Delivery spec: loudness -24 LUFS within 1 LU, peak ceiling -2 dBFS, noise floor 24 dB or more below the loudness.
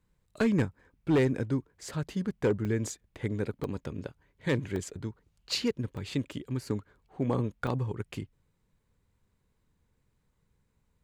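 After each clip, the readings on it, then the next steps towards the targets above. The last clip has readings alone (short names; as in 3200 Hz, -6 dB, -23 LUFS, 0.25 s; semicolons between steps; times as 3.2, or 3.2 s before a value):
clipped 0.5%; flat tops at -19.5 dBFS; dropouts 5; longest dropout 1.3 ms; loudness -32.5 LUFS; peak -19.5 dBFS; loudness target -24.0 LUFS
-> clip repair -19.5 dBFS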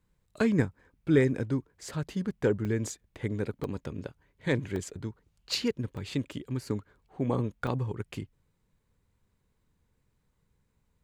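clipped 0.0%; dropouts 5; longest dropout 1.3 ms
-> interpolate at 2.65/3.64/4.76/5.97/7.67, 1.3 ms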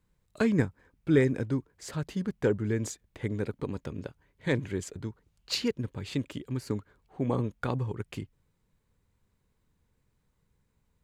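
dropouts 0; loudness -31.5 LUFS; peak -11.5 dBFS; loudness target -24.0 LUFS
-> gain +7.5 dB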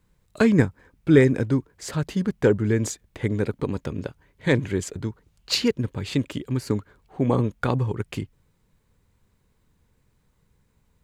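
loudness -24.5 LUFS; peak -4.0 dBFS; noise floor -67 dBFS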